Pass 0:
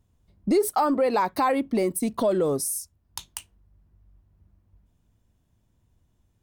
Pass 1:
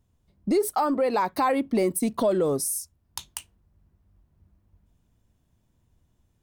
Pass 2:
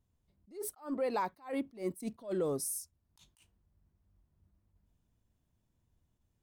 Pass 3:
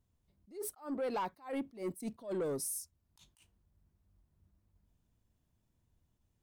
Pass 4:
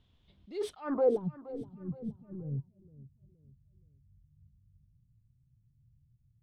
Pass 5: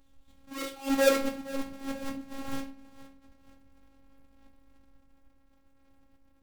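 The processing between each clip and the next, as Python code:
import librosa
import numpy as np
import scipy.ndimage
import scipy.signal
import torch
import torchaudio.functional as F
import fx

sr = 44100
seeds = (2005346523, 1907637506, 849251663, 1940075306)

y1 = fx.hum_notches(x, sr, base_hz=50, count=2)
y1 = fx.rider(y1, sr, range_db=10, speed_s=0.5)
y2 = fx.attack_slew(y1, sr, db_per_s=200.0)
y2 = y2 * 10.0 ** (-9.0 / 20.0)
y3 = 10.0 ** (-30.0 / 20.0) * np.tanh(y2 / 10.0 ** (-30.0 / 20.0))
y4 = fx.rider(y3, sr, range_db=10, speed_s=0.5)
y4 = fx.filter_sweep_lowpass(y4, sr, from_hz=3400.0, to_hz=130.0, start_s=0.79, end_s=1.32, q=5.2)
y4 = fx.echo_feedback(y4, sr, ms=471, feedback_pct=41, wet_db=-17)
y4 = y4 * 10.0 ** (5.0 / 20.0)
y5 = fx.halfwave_hold(y4, sr)
y5 = fx.room_shoebox(y5, sr, seeds[0], volume_m3=49.0, walls='mixed', distance_m=0.52)
y5 = fx.robotise(y5, sr, hz=272.0)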